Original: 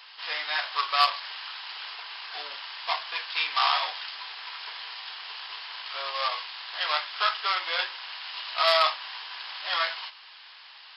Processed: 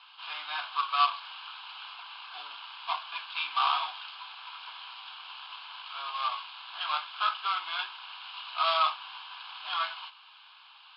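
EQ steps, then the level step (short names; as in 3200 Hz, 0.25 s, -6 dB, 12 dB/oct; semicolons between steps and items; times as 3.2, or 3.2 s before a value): LPF 2900 Hz 12 dB/oct; low shelf 430 Hz -6.5 dB; fixed phaser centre 1900 Hz, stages 6; 0.0 dB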